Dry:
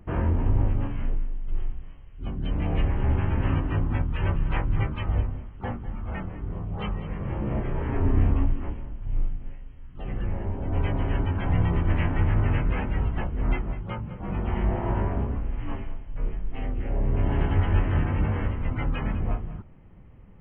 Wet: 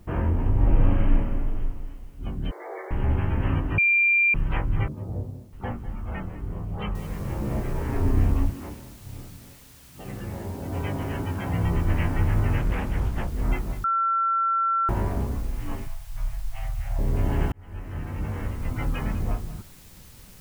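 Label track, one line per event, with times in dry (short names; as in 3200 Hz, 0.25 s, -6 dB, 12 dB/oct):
0.580000	1.150000	reverb throw, RT60 2.2 s, DRR -6 dB
2.510000	2.910000	brick-wall FIR band-pass 330–2300 Hz
3.780000	4.340000	bleep 2380 Hz -16.5 dBFS
4.880000	5.530000	Chebyshev band-pass 110–550 Hz
6.950000	6.950000	noise floor step -68 dB -52 dB
8.490000	11.640000	HPF 95 Hz
12.590000	13.280000	Doppler distortion depth 0.51 ms
13.840000	14.890000	bleep 1350 Hz -20 dBFS
15.870000	16.990000	Chebyshev band-stop 140–640 Hz, order 4
17.520000	18.880000	fade in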